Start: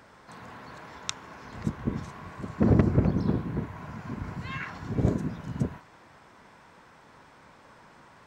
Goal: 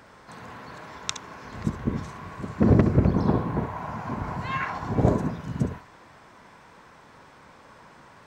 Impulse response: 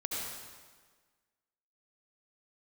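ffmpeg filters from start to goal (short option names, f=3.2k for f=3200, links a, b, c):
-filter_complex "[0:a]asettb=1/sr,asplit=3[a][b][c];[a]atrim=end=3.144[d];[b]atrim=start=3.14:end=5.31,asetpts=PTS-STARTPTS,afade=t=in:d=0.004:c=qsin,afade=t=out:st=2.166:d=0.004:c=qsin,equalizer=f=810:w=1.2:g=10[e];[c]atrim=start=5.306[f];[d][e]acrossfade=d=0.004:c1=hsin:c2=qsin[g];[g][f]acrossfade=d=0.004:c1=qsin:c2=hsin[h];[1:a]atrim=start_sample=2205,atrim=end_sample=3087[i];[h][i]afir=irnorm=-1:irlink=0,volume=5dB"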